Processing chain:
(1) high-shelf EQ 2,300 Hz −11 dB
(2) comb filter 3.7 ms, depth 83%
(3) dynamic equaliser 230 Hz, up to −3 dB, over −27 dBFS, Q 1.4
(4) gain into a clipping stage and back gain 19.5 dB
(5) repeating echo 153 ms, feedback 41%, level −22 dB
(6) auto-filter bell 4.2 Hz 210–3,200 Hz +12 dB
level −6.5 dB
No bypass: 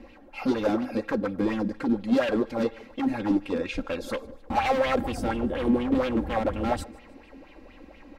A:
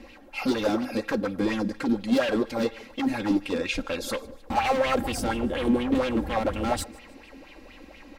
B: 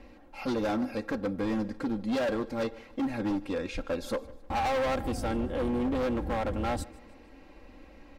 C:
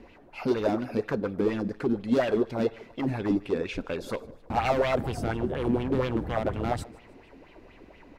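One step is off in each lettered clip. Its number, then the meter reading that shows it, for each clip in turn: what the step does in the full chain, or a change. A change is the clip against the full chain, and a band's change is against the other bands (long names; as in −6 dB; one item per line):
1, 8 kHz band +8.5 dB
6, change in crest factor −7.5 dB
2, 125 Hz band +6.5 dB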